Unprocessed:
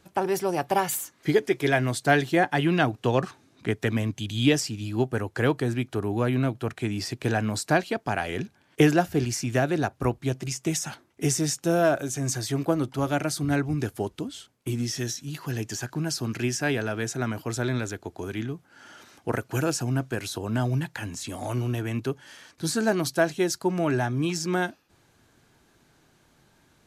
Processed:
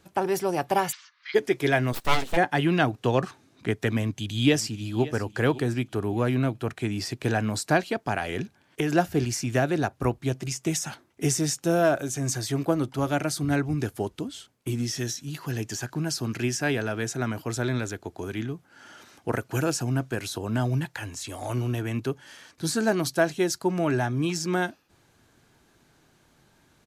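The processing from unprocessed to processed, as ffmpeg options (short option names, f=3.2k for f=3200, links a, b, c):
-filter_complex "[0:a]asplit=3[a][b][c];[a]afade=t=out:st=0.91:d=0.02[d];[b]asuperpass=centerf=2400:order=12:qfactor=0.57,afade=t=in:st=0.91:d=0.02,afade=t=out:st=1.34:d=0.02[e];[c]afade=t=in:st=1.34:d=0.02[f];[d][e][f]amix=inputs=3:normalize=0,asplit=3[g][h][i];[g]afade=t=out:st=1.92:d=0.02[j];[h]aeval=exprs='abs(val(0))':c=same,afade=t=in:st=1.92:d=0.02,afade=t=out:st=2.36:d=0.02[k];[i]afade=t=in:st=2.36:d=0.02[l];[j][k][l]amix=inputs=3:normalize=0,asplit=2[m][n];[n]afade=t=in:st=3.98:d=0.01,afade=t=out:st=5.02:d=0.01,aecho=0:1:560|1120|1680:0.141254|0.0565015|0.0226006[o];[m][o]amix=inputs=2:normalize=0,asettb=1/sr,asplit=3[p][q][r];[p]atrim=end=8.174[s];[q]atrim=start=8.17:end=8.93,asetpts=PTS-STARTPTS,afade=t=in:d=0.004:c=qsin,afade=t=out:st=0.756:d=0.004:c=qsin,acompressor=threshold=-22dB:ratio=6:attack=3.2:release=140:knee=1:detection=peak[t];[r]atrim=start=8.926[u];[s][t]acrossfade=d=0.004:c1=hsin:c2=qsin[v];[v][u]acrossfade=d=0.004:c1=qsin:c2=hsin,asettb=1/sr,asplit=3[w][x][y];[w]atrim=end=20.854[z];[x]atrim=start=20.85:end=21.5,asetpts=PTS-STARTPTS,afade=t=in:d=0.004:c=qsin,afade=t=out:st=0.646:d=0.004:c=qsin,equalizer=f=200:t=o:w=0.62:g=-13[aa];[y]atrim=start=21.496[ab];[z][aa]acrossfade=d=0.004:c1=hsin:c2=qsin[ac];[ac][ab]acrossfade=d=0.004:c1=qsin:c2=hsin"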